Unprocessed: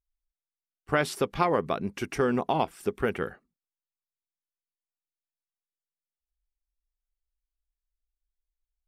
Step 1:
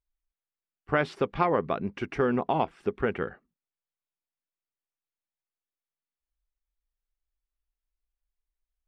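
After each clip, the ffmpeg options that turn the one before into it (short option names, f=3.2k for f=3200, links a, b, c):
-af "lowpass=2.9k"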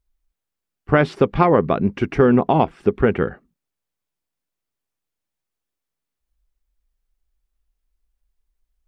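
-af "lowshelf=f=460:g=8,volume=6.5dB"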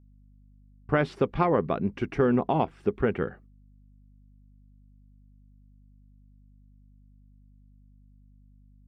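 -af "agate=range=-36dB:threshold=-44dB:ratio=16:detection=peak,aeval=exprs='val(0)+0.00501*(sin(2*PI*50*n/s)+sin(2*PI*2*50*n/s)/2+sin(2*PI*3*50*n/s)/3+sin(2*PI*4*50*n/s)/4+sin(2*PI*5*50*n/s)/5)':c=same,volume=-8.5dB"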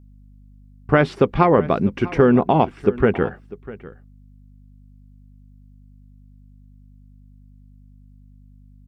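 -af "aecho=1:1:648:0.119,volume=8.5dB"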